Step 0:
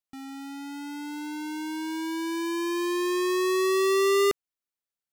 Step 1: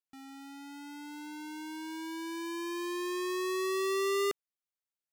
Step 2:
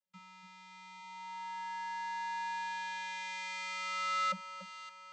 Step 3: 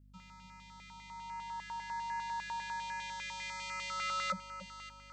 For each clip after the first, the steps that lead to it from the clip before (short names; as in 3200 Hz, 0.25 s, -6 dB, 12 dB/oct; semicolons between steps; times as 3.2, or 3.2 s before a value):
low shelf 220 Hz -6.5 dB; gain -7 dB
vocoder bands 32, square 186 Hz; echo with dull and thin repeats by turns 0.286 s, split 1300 Hz, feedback 71%, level -9 dB; gain -4 dB
hum 50 Hz, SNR 22 dB; stepped notch 10 Hz 920–3400 Hz; gain +2 dB